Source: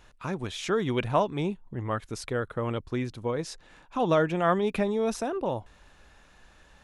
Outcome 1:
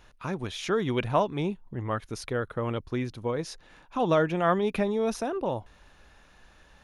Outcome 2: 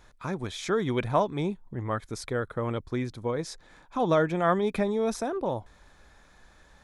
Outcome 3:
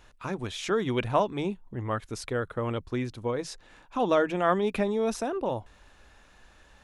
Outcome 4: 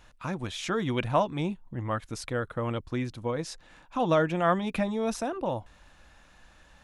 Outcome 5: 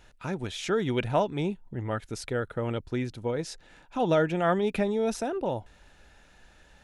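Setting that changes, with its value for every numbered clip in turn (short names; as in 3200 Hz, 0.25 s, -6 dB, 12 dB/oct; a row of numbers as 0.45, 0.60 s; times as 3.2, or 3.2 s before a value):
notch, frequency: 7700, 2800, 160, 410, 1100 Hz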